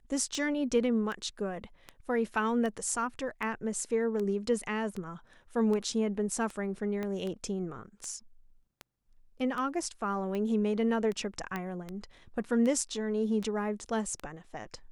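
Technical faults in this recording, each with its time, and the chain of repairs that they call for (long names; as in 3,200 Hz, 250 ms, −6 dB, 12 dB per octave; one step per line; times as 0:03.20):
scratch tick 78 rpm −24 dBFS
0:07.03: click −23 dBFS
0:11.56: click −21 dBFS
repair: click removal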